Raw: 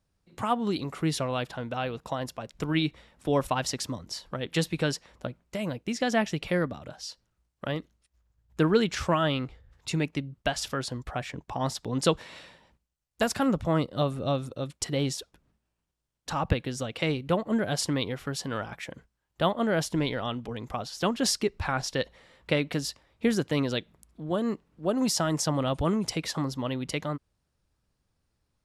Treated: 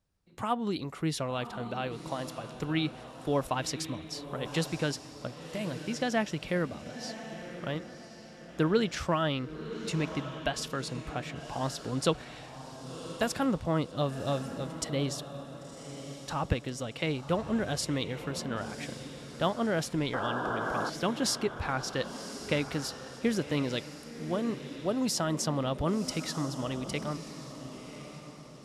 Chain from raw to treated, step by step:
sound drawn into the spectrogram noise, 0:20.13–0:20.90, 260–1,700 Hz −30 dBFS
feedback delay with all-pass diffusion 1,070 ms, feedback 41%, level −10.5 dB
level −3.5 dB

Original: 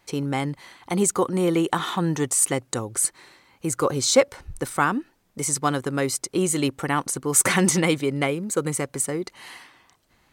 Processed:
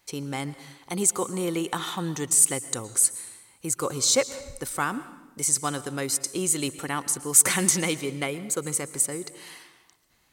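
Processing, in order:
high-shelf EQ 3,500 Hz +10.5 dB
on a send: convolution reverb RT60 1.1 s, pre-delay 108 ms, DRR 15 dB
on the sum: level −7 dB

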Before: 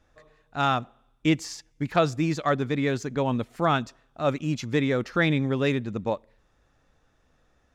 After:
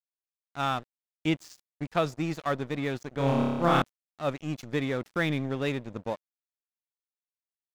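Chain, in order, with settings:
tape wow and flutter 21 cents
dead-zone distortion −37 dBFS
0:03.14–0:03.82: flutter between parallel walls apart 5 metres, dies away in 1.4 s
level −4 dB

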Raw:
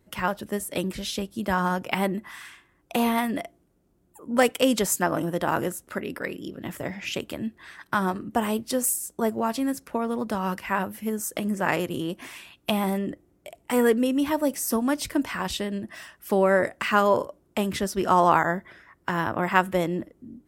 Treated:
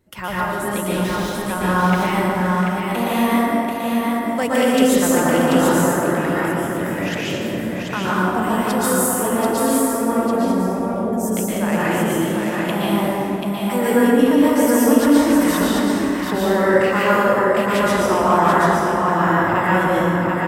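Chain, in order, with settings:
0:10.12–0:11.13: Butterworth low-pass 710 Hz 36 dB per octave
in parallel at +2 dB: brickwall limiter −15 dBFS, peak gain reduction 11.5 dB
0:01.03–0:01.50: on the sum: gain into a clipping stage and back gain 28 dB
single-tap delay 736 ms −4 dB
dense smooth reverb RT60 2.8 s, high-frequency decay 0.45×, pre-delay 105 ms, DRR −8 dB
level −8 dB

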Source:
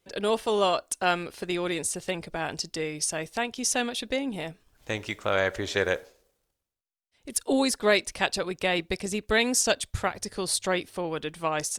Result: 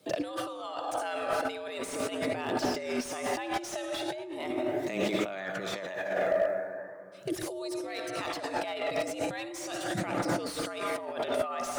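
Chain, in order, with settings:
notch filter 990 Hz, Q 24
hum removal 134 Hz, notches 2
hollow resonant body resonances 250/510/1,100 Hz, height 8 dB, ringing for 40 ms
on a send at −7 dB: convolution reverb RT60 2.4 s, pre-delay 47 ms
on the sum: frequency shifter +94 Hz
brickwall limiter −18 dBFS, peak gain reduction 10.5 dB
compressor whose output falls as the input rises −36 dBFS, ratio −1
flanger 0.39 Hz, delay 0.2 ms, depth 1.4 ms, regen +47%
slew-rate limiting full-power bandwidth 29 Hz
level +7 dB

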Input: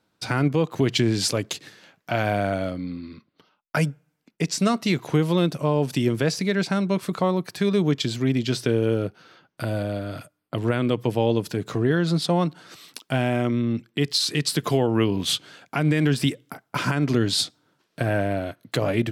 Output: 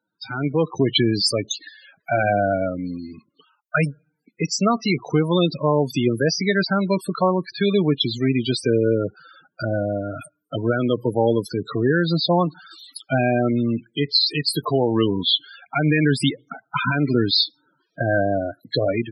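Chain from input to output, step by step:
spectral tilt +2 dB per octave
spectral peaks only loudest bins 16
automatic gain control gain up to 11.5 dB
level −4 dB

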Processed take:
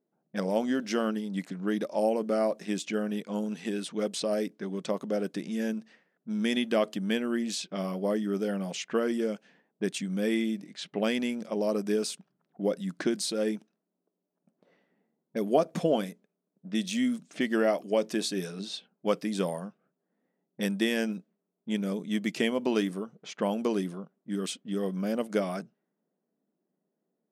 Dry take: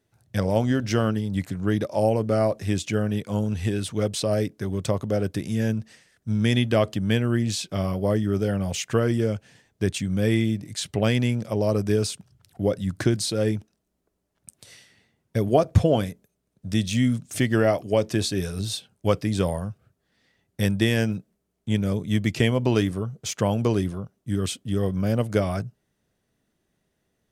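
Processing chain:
low-pass that shuts in the quiet parts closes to 750 Hz, open at −21 dBFS
linear-phase brick-wall high-pass 160 Hz
level −4.5 dB

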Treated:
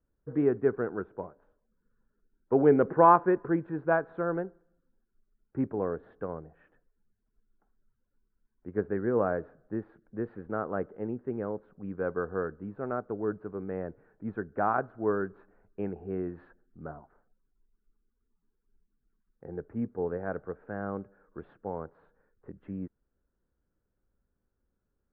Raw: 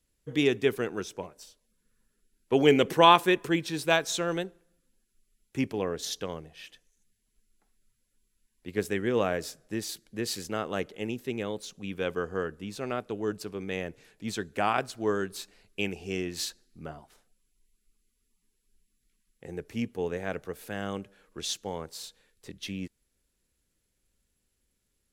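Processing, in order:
elliptic low-pass filter 1,500 Hz, stop band 80 dB

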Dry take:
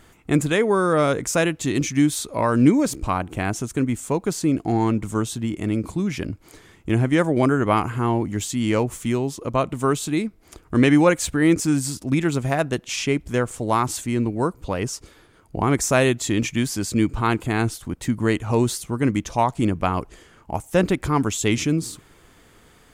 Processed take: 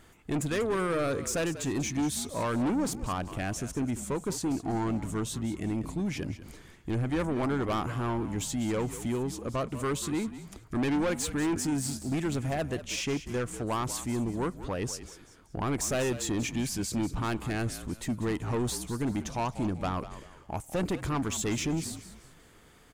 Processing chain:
soft clipping −20 dBFS, distortion −8 dB
on a send: echo with shifted repeats 192 ms, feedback 35%, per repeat −54 Hz, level −13 dB
on the sum: level −5 dB

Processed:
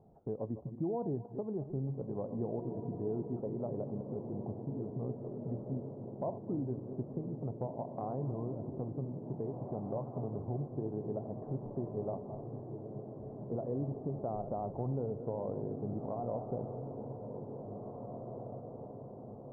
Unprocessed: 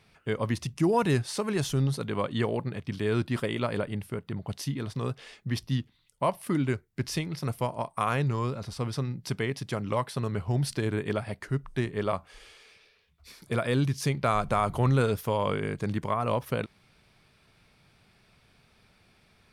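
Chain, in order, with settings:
feedback delay that plays each chunk backwards 126 ms, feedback 43%, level −13 dB
elliptic low-pass filter 780 Hz, stop band 80 dB
low-shelf EQ 130 Hz −7.5 dB
downward compressor 2 to 1, threshold −51 dBFS, peak gain reduction 15.5 dB
on a send: feedback delay with all-pass diffusion 1,987 ms, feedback 56%, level −6.5 dB
on the sum: level +5.5 dB

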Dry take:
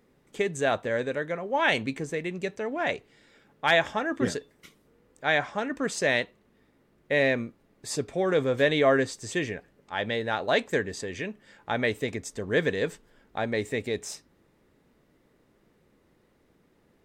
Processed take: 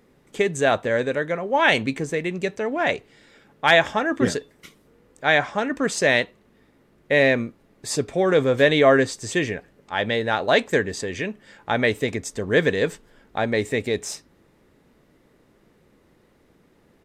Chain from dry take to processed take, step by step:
downsampling to 32,000 Hz
level +6 dB

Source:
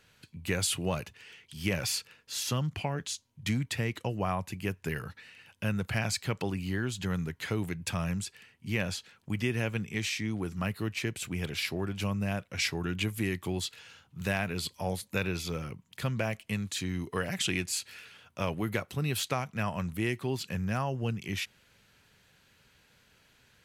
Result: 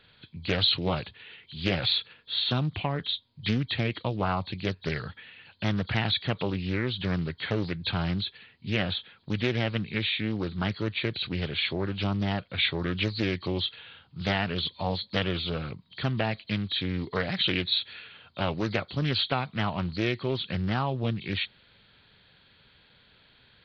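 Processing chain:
hearing-aid frequency compression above 3,100 Hz 4 to 1
highs frequency-modulated by the lows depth 0.54 ms
level +3.5 dB

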